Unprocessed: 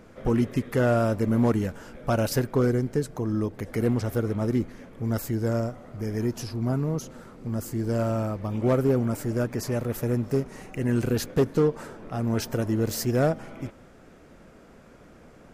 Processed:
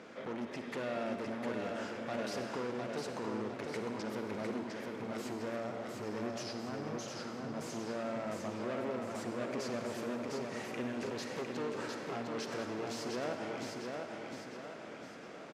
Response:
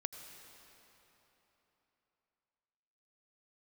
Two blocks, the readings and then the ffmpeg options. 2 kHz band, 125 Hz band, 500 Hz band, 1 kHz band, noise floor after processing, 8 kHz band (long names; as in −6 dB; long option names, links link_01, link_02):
−5.0 dB, −22.5 dB, −11.0 dB, −6.5 dB, −48 dBFS, −10.0 dB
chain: -filter_complex "[0:a]highshelf=frequency=2600:gain=9.5,acompressor=threshold=-27dB:ratio=6,asoftclip=type=tanh:threshold=-35dB,highpass=250,lowpass=4200,aecho=1:1:705|1410|2115|2820|3525|4230:0.631|0.297|0.139|0.0655|0.0308|0.0145[link_01];[1:a]atrim=start_sample=2205,asetrate=79380,aresample=44100[link_02];[link_01][link_02]afir=irnorm=-1:irlink=0,volume=7.5dB"